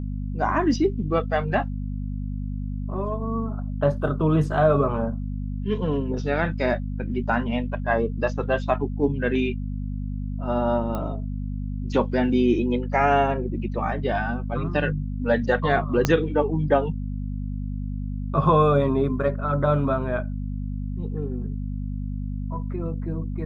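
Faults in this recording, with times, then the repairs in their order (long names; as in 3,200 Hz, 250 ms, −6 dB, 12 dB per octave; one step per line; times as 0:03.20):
mains hum 50 Hz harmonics 5 −29 dBFS
0:10.95: click −17 dBFS
0:16.05: click −5 dBFS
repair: click removal
hum removal 50 Hz, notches 5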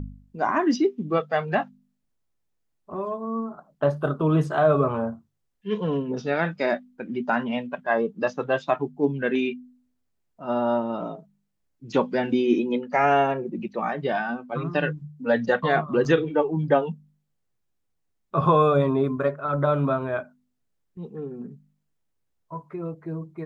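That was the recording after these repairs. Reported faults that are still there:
0:16.05: click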